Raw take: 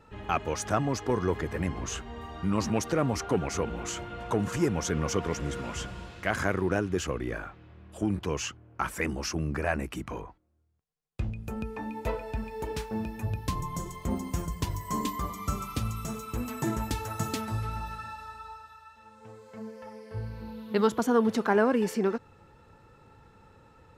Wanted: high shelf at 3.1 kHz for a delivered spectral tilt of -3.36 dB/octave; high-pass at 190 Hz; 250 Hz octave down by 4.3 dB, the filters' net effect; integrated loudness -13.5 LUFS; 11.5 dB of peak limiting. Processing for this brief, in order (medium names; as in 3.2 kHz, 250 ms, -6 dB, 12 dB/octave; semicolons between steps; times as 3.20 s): high-pass 190 Hz; peaking EQ 250 Hz -3.5 dB; treble shelf 3.1 kHz +5.5 dB; trim +21.5 dB; peak limiter 0 dBFS